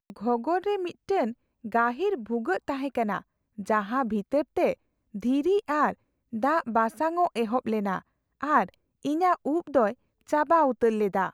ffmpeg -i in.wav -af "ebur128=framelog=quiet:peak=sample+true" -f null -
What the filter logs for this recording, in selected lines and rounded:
Integrated loudness:
  I:         -26.9 LUFS
  Threshold: -37.3 LUFS
Loudness range:
  LRA:         2.7 LU
  Threshold: -47.6 LUFS
  LRA low:   -28.9 LUFS
  LRA high:  -26.1 LUFS
Sample peak:
  Peak:       -9.3 dBFS
True peak:
  Peak:       -9.3 dBFS